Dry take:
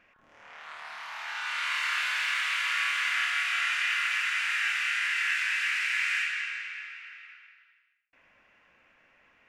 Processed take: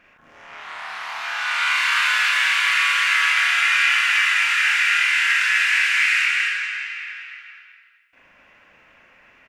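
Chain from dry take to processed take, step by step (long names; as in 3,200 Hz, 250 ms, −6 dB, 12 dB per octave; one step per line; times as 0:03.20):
loudspeakers that aren't time-aligned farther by 13 metres −1 dB, 87 metres −2 dB
level +6.5 dB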